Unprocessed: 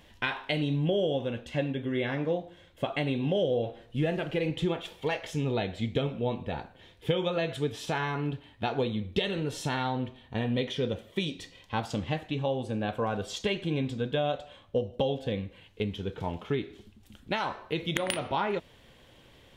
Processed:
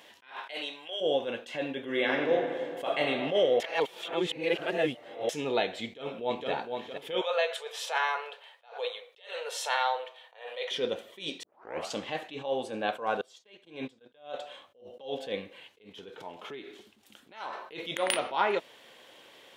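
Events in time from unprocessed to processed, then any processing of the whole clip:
0.4–1 HPF 410 Hz -> 1400 Hz
1.81–3.01 reverb throw, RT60 2.4 s, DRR 3 dB
3.6–5.29 reverse
5.84–6.51 echo throw 0.46 s, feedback 35%, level -6 dB
7.21–10.71 elliptic high-pass 480 Hz
11.43 tape start 0.50 s
13.21–14.32 gate -31 dBFS, range -22 dB
15.89–17.53 compressor, threshold -38 dBFS
whole clip: HPF 430 Hz 12 dB/oct; attack slew limiter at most 150 dB/s; gain +5 dB

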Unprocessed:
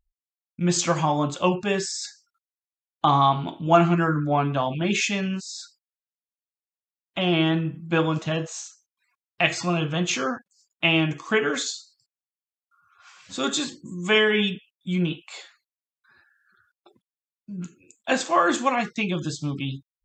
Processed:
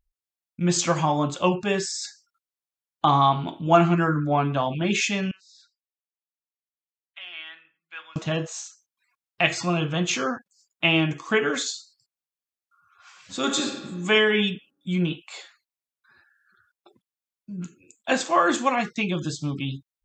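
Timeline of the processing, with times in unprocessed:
5.31–8.16 ladder band-pass 2400 Hz, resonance 30%
13.38–13.85 reverb throw, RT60 1.4 s, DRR 4 dB

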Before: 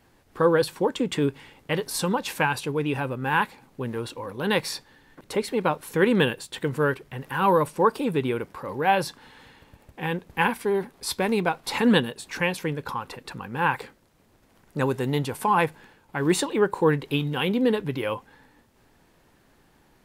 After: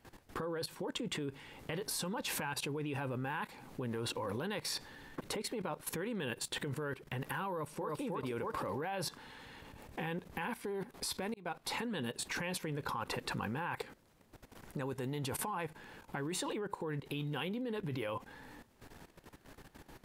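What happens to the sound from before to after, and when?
7.5–8 echo throw 0.31 s, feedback 25%, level -1.5 dB
11.34–11.98 fade in
whole clip: compressor 5:1, threshold -33 dBFS; limiter -28 dBFS; level quantiser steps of 15 dB; gain +7 dB

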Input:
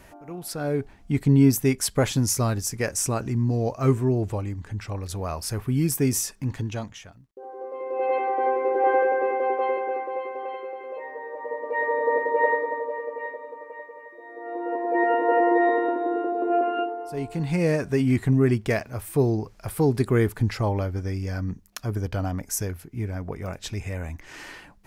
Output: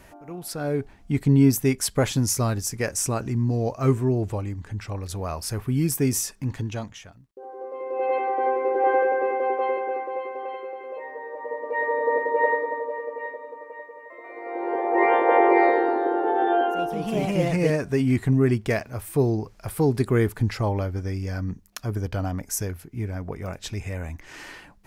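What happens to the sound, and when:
13.96–18 echoes that change speed 0.14 s, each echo +2 st, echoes 2

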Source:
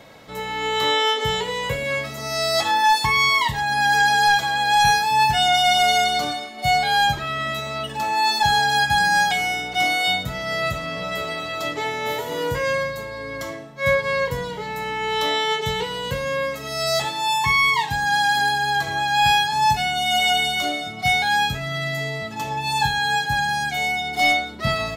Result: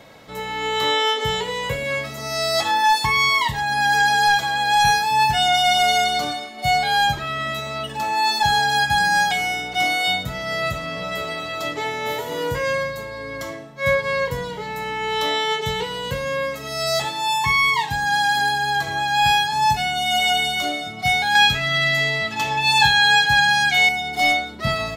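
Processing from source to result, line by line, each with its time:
21.35–23.89 bell 2800 Hz +10 dB 2.5 oct

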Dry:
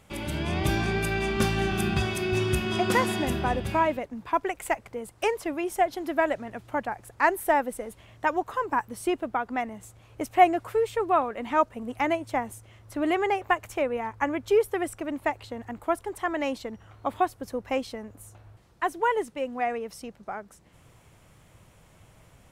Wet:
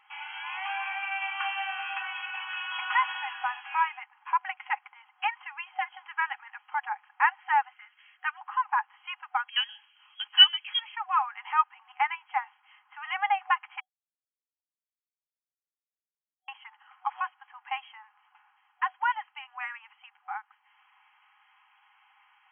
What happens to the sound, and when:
7.73–8.41 band shelf 780 Hz -12 dB 1.2 oct
9.48–10.79 inverted band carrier 3700 Hz
13.8–16.48 mute
whole clip: FFT band-pass 750–3300 Hz; comb 4.8 ms, depth 42%

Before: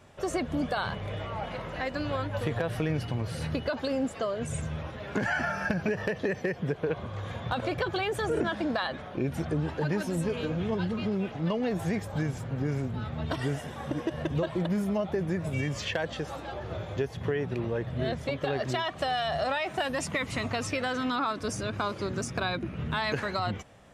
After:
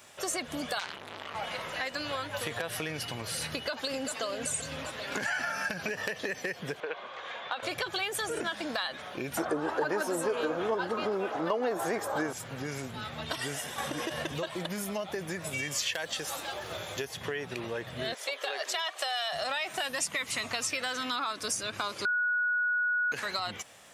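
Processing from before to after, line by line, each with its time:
0.79–1.35 core saturation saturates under 2100 Hz
3.5–4.22 echo throw 0.39 s, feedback 65%, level -8.5 dB
5.12–5.96 upward compressor, threshold -29 dBFS
6.8–7.63 BPF 450–3100 Hz
9.37–12.33 band shelf 640 Hz +14.5 dB 2.9 oct
13.78–14.45 fast leveller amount 50%
15.71–17.05 high shelf 8200 Hz +10 dB
18.14–19.33 HPF 440 Hz 24 dB/oct
22.05–23.12 bleep 1460 Hz -21 dBFS
whole clip: tilt +4 dB/oct; compressor 2.5:1, threshold -33 dBFS; gain +1.5 dB

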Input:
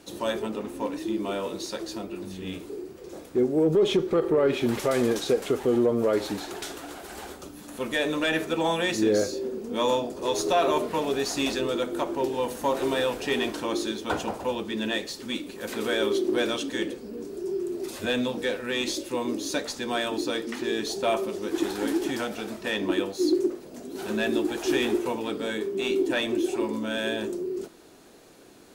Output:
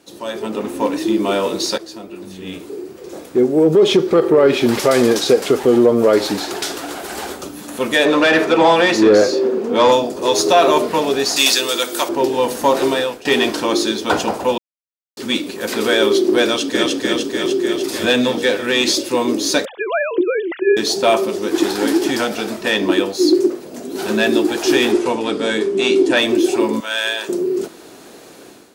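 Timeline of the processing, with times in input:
1.78–4.05 fade in, from -13 dB
8.05–9.92 overdrive pedal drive 16 dB, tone 1200 Hz, clips at -13 dBFS
11.36–12.09 tilt +4 dB/oct
12.82–13.25 fade out, to -19.5 dB
14.58–15.17 mute
16.44–16.92 echo throw 0.3 s, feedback 70%, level -1 dB
19.65–20.77 sine-wave speech
24.92–26.17 LPF 10000 Hz 24 dB/oct
26.8–27.29 HPF 920 Hz
whole clip: dynamic EQ 4900 Hz, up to +5 dB, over -52 dBFS, Q 2.9; AGC gain up to 13 dB; HPF 150 Hz 6 dB/oct

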